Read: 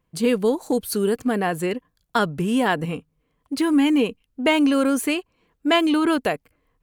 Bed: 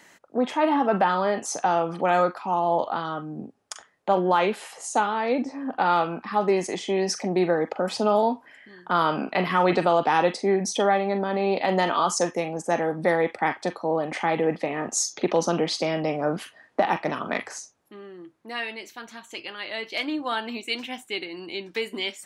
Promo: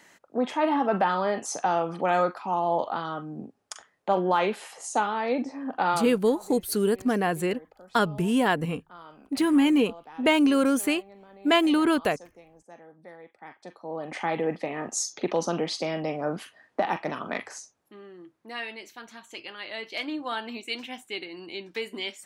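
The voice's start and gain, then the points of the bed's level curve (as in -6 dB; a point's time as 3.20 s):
5.80 s, -2.5 dB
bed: 5.89 s -2.5 dB
6.38 s -25 dB
13.30 s -25 dB
14.19 s -4 dB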